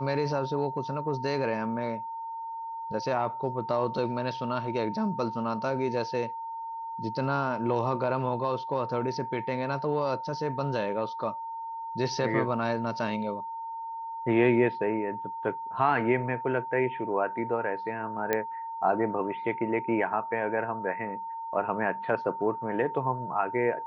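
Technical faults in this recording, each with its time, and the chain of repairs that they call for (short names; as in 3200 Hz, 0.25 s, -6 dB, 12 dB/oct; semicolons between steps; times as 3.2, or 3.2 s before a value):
tone 910 Hz -34 dBFS
18.33 pop -12 dBFS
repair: de-click; notch 910 Hz, Q 30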